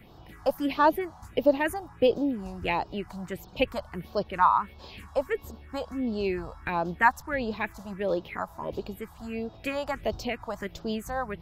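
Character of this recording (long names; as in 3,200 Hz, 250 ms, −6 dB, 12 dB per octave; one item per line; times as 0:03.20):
phaser sweep stages 4, 1.5 Hz, lowest notch 370–2,100 Hz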